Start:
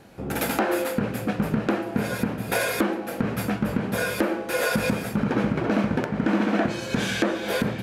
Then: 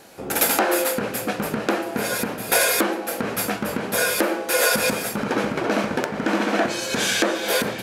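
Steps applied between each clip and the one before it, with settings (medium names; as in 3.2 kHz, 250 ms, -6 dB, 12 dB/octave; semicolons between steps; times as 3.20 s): tone controls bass -13 dB, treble +8 dB; trim +4.5 dB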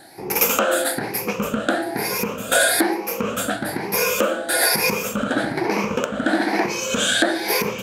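drifting ripple filter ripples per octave 0.8, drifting +1.1 Hz, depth 14 dB; trim -1 dB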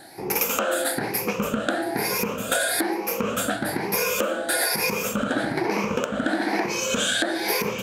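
compression, threshold -20 dBFS, peak gain reduction 8 dB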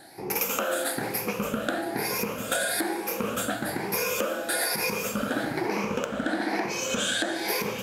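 plate-style reverb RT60 3.2 s, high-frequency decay 0.95×, DRR 11.5 dB; trim -4 dB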